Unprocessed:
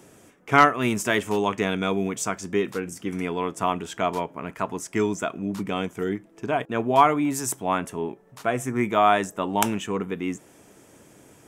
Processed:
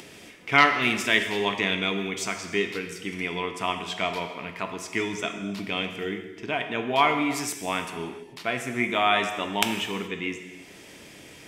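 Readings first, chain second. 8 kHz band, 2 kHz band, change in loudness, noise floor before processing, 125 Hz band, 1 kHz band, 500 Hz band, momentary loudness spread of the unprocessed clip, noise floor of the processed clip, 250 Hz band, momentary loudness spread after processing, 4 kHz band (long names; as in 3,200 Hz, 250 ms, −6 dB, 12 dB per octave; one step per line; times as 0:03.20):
−3.5 dB, +4.0 dB, −1.5 dB, −54 dBFS, −5.5 dB, −4.0 dB, −4.5 dB, 12 LU, −47 dBFS, −4.5 dB, 15 LU, +7.0 dB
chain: flat-topped bell 3,100 Hz +11.5 dB
upward compression, threshold −33 dBFS
reverb whose tail is shaped and stops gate 460 ms falling, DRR 5.5 dB
level −5.5 dB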